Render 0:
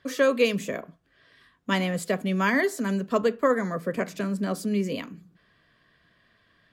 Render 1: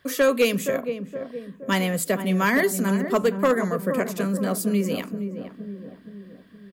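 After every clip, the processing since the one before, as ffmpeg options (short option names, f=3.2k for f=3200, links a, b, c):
-filter_complex "[0:a]acrossover=split=7400[a][b];[b]crystalizer=i=2:c=0[c];[a][c]amix=inputs=2:normalize=0,asplit=2[d][e];[e]adelay=469,lowpass=f=810:p=1,volume=-7.5dB,asplit=2[f][g];[g]adelay=469,lowpass=f=810:p=1,volume=0.55,asplit=2[h][i];[i]adelay=469,lowpass=f=810:p=1,volume=0.55,asplit=2[j][k];[k]adelay=469,lowpass=f=810:p=1,volume=0.55,asplit=2[l][m];[m]adelay=469,lowpass=f=810:p=1,volume=0.55,asplit=2[n][o];[o]adelay=469,lowpass=f=810:p=1,volume=0.55,asplit=2[p][q];[q]adelay=469,lowpass=f=810:p=1,volume=0.55[r];[d][f][h][j][l][n][p][r]amix=inputs=8:normalize=0,volume=15dB,asoftclip=hard,volume=-15dB,volume=2.5dB"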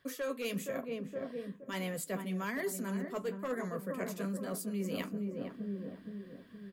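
-af "areverse,acompressor=threshold=-30dB:ratio=10,areverse,flanger=delay=7.2:depth=4.2:regen=-45:speed=1.1:shape=sinusoidal"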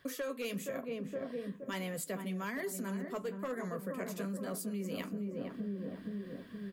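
-af "acompressor=threshold=-42dB:ratio=4,volume=5.5dB"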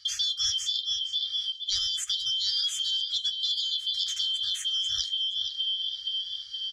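-af "afftfilt=real='real(if(lt(b,272),68*(eq(floor(b/68),0)*2+eq(floor(b/68),1)*3+eq(floor(b/68),2)*0+eq(floor(b/68),3)*1)+mod(b,68),b),0)':imag='imag(if(lt(b,272),68*(eq(floor(b/68),0)*2+eq(floor(b/68),1)*3+eq(floor(b/68),2)*0+eq(floor(b/68),3)*1)+mod(b,68),b),0)':win_size=2048:overlap=0.75,afftfilt=real='re*(1-between(b*sr/4096,120,1200))':imag='im*(1-between(b*sr/4096,120,1200))':win_size=4096:overlap=0.75,lowpass=f=6.2k:t=q:w=3.8,volume=6.5dB"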